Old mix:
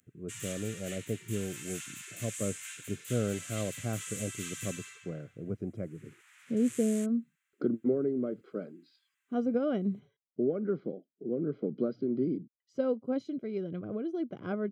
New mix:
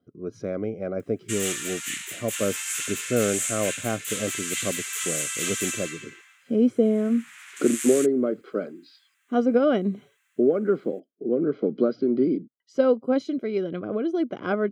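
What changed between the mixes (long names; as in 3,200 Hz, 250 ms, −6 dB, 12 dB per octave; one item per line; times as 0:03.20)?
background: entry +1.00 s
master: add drawn EQ curve 140 Hz 0 dB, 250 Hz +8 dB, 1,100 Hz +13 dB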